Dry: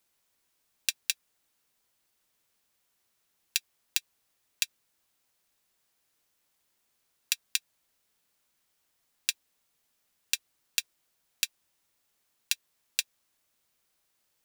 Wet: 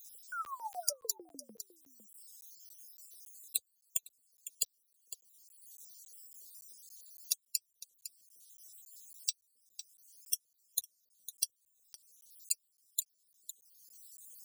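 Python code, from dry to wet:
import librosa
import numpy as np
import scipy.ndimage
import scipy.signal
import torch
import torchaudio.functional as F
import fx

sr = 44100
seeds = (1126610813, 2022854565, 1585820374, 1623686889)

p1 = fx.spec_dropout(x, sr, seeds[0], share_pct=62)
p2 = scipy.signal.sosfilt(scipy.signal.cheby1(2, 1.0, [200.0, 6500.0], 'bandstop', fs=sr, output='sos'), p1)
p3 = fx.spec_paint(p2, sr, seeds[1], shape='fall', start_s=0.32, length_s=1.24, low_hz=200.0, high_hz=1500.0, level_db=-41.0)
p4 = fx.graphic_eq_10(p3, sr, hz=(500, 1000, 2000), db=(-7, -11, -9))
p5 = fx.filter_lfo_highpass(p4, sr, shape='saw_up', hz=6.7, low_hz=470.0, high_hz=1900.0, q=6.0)
p6 = scipy.signal.sosfilt(scipy.signal.butter(4, 74.0, 'highpass', fs=sr, output='sos'), p5)
p7 = p6 + fx.echo_single(p6, sr, ms=505, db=-21.5, dry=0)
p8 = fx.dynamic_eq(p7, sr, hz=870.0, q=1.4, threshold_db=-59.0, ratio=4.0, max_db=6)
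p9 = fx.buffer_crackle(p8, sr, first_s=0.45, period_s=0.28, block=512, kind='zero')
p10 = fx.band_squash(p9, sr, depth_pct=70)
y = F.gain(torch.from_numpy(p10), 6.0).numpy()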